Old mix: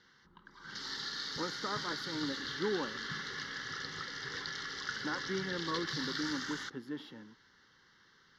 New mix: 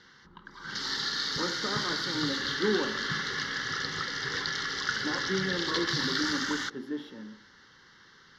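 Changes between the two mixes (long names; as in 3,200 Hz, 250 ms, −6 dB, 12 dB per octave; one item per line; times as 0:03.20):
background +8.5 dB
reverb: on, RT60 0.75 s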